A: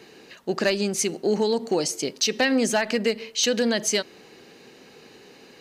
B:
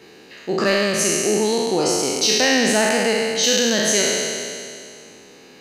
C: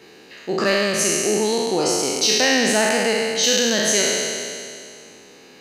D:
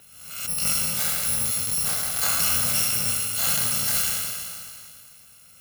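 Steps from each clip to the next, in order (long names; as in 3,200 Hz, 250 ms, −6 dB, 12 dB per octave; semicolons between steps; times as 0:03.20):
peak hold with a decay on every bin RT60 2.37 s
low-shelf EQ 330 Hz −2.5 dB
samples in bit-reversed order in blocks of 128 samples; background raised ahead of every attack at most 59 dB per second; level −5 dB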